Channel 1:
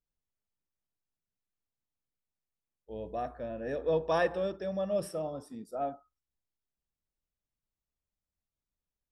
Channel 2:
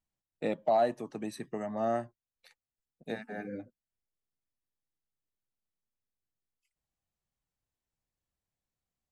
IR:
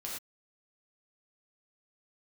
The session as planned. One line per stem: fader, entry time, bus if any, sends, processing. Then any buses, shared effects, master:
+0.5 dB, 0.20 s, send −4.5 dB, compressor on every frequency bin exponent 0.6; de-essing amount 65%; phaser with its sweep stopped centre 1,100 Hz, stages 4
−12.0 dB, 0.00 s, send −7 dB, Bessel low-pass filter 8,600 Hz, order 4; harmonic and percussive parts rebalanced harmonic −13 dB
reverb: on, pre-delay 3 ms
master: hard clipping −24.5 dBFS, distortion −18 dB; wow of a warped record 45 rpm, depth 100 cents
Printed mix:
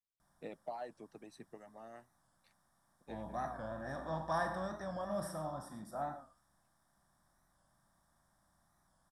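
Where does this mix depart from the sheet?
stem 1 +0.5 dB → −6.5 dB
stem 2: send off

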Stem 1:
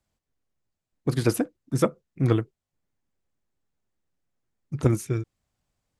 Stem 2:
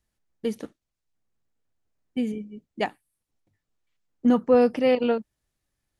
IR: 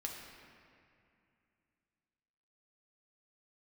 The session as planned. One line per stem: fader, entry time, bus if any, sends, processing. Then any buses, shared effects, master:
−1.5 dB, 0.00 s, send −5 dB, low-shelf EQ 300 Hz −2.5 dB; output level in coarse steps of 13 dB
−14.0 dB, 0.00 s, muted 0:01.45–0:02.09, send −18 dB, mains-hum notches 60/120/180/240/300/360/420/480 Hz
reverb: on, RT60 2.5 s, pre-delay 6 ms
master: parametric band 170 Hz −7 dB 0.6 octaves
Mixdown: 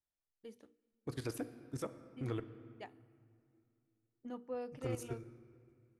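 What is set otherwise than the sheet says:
stem 1 −1.5 dB → −13.0 dB
stem 2 −14.0 dB → −23.5 dB

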